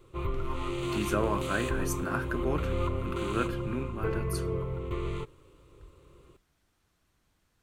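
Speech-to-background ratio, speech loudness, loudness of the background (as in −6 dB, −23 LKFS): −0.5 dB, −34.5 LKFS, −34.0 LKFS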